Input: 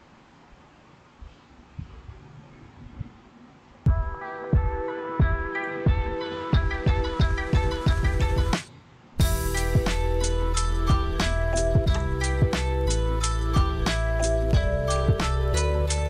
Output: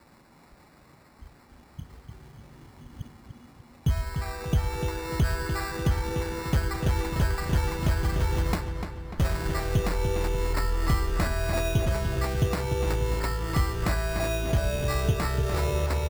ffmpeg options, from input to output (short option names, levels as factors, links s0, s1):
-filter_complex "[0:a]acrusher=samples=14:mix=1:aa=0.000001,asplit=2[s0][s1];[s1]adelay=296,lowpass=f=4400:p=1,volume=0.447,asplit=2[s2][s3];[s3]adelay=296,lowpass=f=4400:p=1,volume=0.53,asplit=2[s4][s5];[s5]adelay=296,lowpass=f=4400:p=1,volume=0.53,asplit=2[s6][s7];[s7]adelay=296,lowpass=f=4400:p=1,volume=0.53,asplit=2[s8][s9];[s9]adelay=296,lowpass=f=4400:p=1,volume=0.53,asplit=2[s10][s11];[s11]adelay=296,lowpass=f=4400:p=1,volume=0.53[s12];[s0][s2][s4][s6][s8][s10][s12]amix=inputs=7:normalize=0,volume=0.668"